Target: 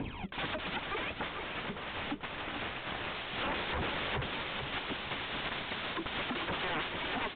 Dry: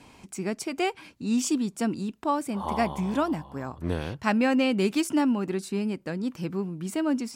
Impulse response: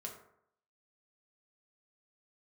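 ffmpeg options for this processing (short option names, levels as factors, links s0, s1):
-filter_complex "[0:a]equalizer=f=420:t=o:w=0.65:g=3.5,dynaudnorm=f=100:g=9:m=3.35,acrusher=bits=6:mode=log:mix=0:aa=0.000001,aphaser=in_gain=1:out_gain=1:delay=3.9:decay=0.75:speed=0.73:type=triangular,aeval=exprs='0.0168*(abs(mod(val(0)/0.0168+3,4)-2)-1)':c=same,asettb=1/sr,asplit=3[s0][s1][s2];[s0]atrim=end=0.784[s3];[s1]atrim=start=0.78:end=3.15,asetpts=PTS-STARTPTS,afade=t=in:d=0.004:c=qsin,afade=t=out:st=2.366:d=0.004:c=qsin,adynamicsmooth=sensitivity=7:basefreq=3000[s4];[s2]atrim=start=3.146[s5];[s3][s4]acrossfade=d=0.004:c1=hsin:c2=qsin[s6];[s6][s5]acrossfade=d=0.004:c1=qsin:c2=hsin,aecho=1:1:441|882|1323|1764:0.447|0.134|0.0402|0.0121,volume=2.11" -ar 8000 -c:a adpcm_g726 -b:a 40k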